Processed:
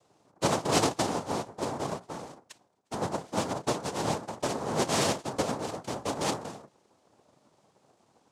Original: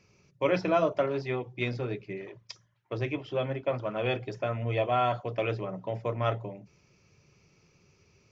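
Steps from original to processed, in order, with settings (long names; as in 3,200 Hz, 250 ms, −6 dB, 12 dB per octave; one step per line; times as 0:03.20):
samples in bit-reversed order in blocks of 16 samples
cochlear-implant simulation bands 2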